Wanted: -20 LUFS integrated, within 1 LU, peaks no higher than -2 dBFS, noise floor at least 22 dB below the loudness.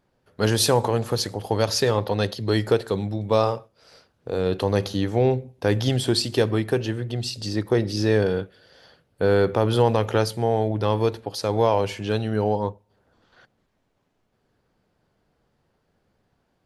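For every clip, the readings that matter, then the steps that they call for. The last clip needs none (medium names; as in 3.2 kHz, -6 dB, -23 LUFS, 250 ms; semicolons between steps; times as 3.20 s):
loudness -23.0 LUFS; peak level -5.5 dBFS; loudness target -20.0 LUFS
-> trim +3 dB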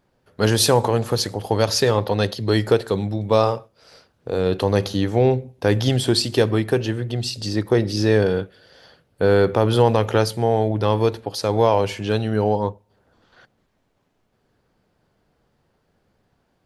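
loudness -20.0 LUFS; peak level -2.5 dBFS; noise floor -68 dBFS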